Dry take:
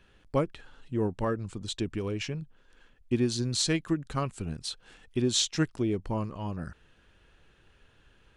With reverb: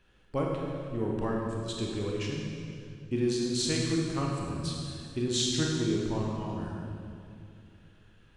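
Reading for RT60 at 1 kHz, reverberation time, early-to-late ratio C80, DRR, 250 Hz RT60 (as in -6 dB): 2.2 s, 2.4 s, 1.5 dB, -2.0 dB, 2.9 s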